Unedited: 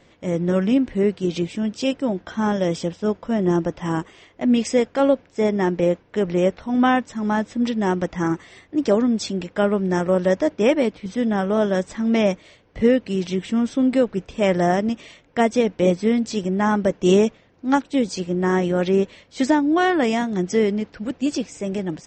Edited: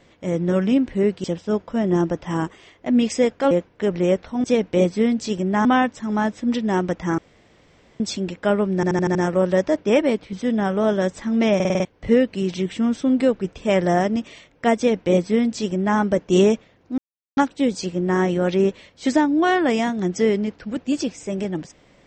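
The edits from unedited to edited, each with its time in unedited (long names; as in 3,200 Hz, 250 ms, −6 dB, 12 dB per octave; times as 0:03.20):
0:01.24–0:02.79: remove
0:05.06–0:05.85: remove
0:08.31–0:09.13: fill with room tone
0:09.88: stutter 0.08 s, 6 plays
0:12.28: stutter in place 0.05 s, 6 plays
0:15.50–0:16.71: duplicate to 0:06.78
0:17.71: splice in silence 0.39 s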